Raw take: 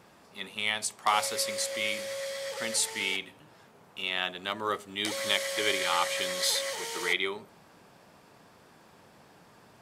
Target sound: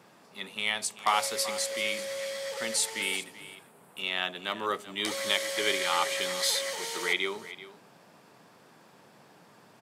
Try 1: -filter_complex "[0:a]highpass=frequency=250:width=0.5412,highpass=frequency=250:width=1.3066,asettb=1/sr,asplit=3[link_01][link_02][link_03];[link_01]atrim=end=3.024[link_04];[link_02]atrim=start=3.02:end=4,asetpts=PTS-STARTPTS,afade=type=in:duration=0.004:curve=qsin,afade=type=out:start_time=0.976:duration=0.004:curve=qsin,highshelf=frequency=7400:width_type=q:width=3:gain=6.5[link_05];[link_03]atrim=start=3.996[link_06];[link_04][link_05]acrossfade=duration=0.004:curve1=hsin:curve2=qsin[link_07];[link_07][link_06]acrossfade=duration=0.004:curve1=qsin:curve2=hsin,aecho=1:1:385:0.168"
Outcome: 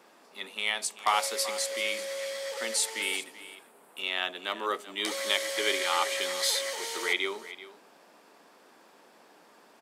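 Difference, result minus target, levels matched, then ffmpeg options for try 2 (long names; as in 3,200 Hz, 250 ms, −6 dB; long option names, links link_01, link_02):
125 Hz band −10.5 dB
-filter_complex "[0:a]highpass=frequency=120:width=0.5412,highpass=frequency=120:width=1.3066,asettb=1/sr,asplit=3[link_01][link_02][link_03];[link_01]atrim=end=3.024[link_04];[link_02]atrim=start=3.02:end=4,asetpts=PTS-STARTPTS,afade=type=in:duration=0.004:curve=qsin,afade=type=out:start_time=0.976:duration=0.004:curve=qsin,highshelf=frequency=7400:width_type=q:width=3:gain=6.5[link_05];[link_03]atrim=start=3.996[link_06];[link_04][link_05]acrossfade=duration=0.004:curve1=hsin:curve2=qsin[link_07];[link_07][link_06]acrossfade=duration=0.004:curve1=qsin:curve2=hsin,aecho=1:1:385:0.168"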